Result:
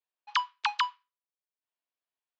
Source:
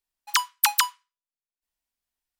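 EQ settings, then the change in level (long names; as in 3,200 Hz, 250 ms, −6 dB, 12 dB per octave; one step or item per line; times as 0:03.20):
high-frequency loss of the air 160 metres
loudspeaker in its box 500–6,200 Hz, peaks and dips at 810 Hz −5 dB, 1,400 Hz −4 dB, 2,000 Hz −6 dB, 5,700 Hz −4 dB
high-shelf EQ 4,700 Hz −11 dB
+1.5 dB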